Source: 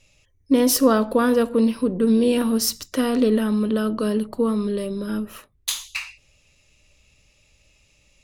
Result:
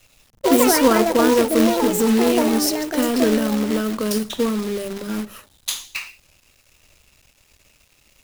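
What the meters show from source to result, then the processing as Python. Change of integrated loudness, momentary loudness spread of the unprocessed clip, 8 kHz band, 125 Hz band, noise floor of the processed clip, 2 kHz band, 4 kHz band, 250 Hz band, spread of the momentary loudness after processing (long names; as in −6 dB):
+2.5 dB, 11 LU, +3.0 dB, 0.0 dB, −59 dBFS, +5.5 dB, +3.5 dB, +1.0 dB, 14 LU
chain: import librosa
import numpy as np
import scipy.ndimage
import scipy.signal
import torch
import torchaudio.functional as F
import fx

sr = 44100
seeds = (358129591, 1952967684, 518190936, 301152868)

y = fx.echo_pitch(x, sr, ms=93, semitones=6, count=2, db_per_echo=-3.0)
y = fx.quant_companded(y, sr, bits=4)
y = fx.hum_notches(y, sr, base_hz=50, count=4)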